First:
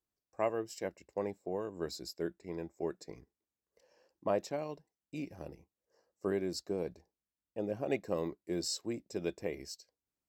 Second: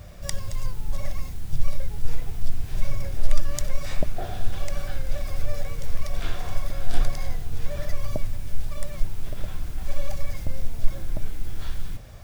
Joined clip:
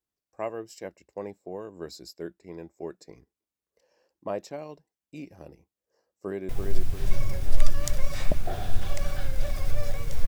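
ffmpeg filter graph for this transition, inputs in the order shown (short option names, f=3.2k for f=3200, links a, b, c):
-filter_complex "[0:a]apad=whole_dur=10.27,atrim=end=10.27,atrim=end=6.492[a];[1:a]atrim=start=2.198:end=5.98[b];[a][b]acrossfade=d=0.004:c1=hsin:c2=hsin,asplit=2[c][d];[d]afade=t=in:st=5.89:d=0.01,afade=t=out:st=6.49:d=0.01,aecho=0:1:340|680|1020|1360|1700:0.668344|0.267338|0.106935|0.042774|0.0171096[e];[c][e]amix=inputs=2:normalize=0"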